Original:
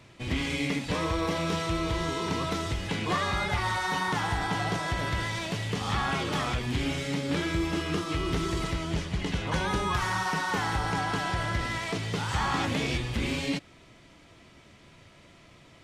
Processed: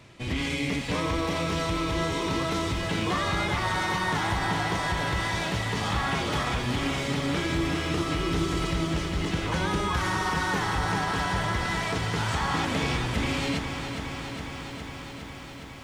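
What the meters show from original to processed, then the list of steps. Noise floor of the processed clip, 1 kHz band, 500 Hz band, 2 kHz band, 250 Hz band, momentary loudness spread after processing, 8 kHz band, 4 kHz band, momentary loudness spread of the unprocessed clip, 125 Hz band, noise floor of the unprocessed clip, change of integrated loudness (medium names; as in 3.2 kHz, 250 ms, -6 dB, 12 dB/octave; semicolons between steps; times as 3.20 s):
-40 dBFS, +2.0 dB, +2.0 dB, +2.5 dB, +2.0 dB, 7 LU, +2.5 dB, +2.5 dB, 3 LU, +2.0 dB, -55 dBFS, +2.0 dB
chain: peak limiter -21.5 dBFS, peak gain reduction 3.5 dB; bit-crushed delay 411 ms, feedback 80%, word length 10-bit, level -8 dB; trim +2 dB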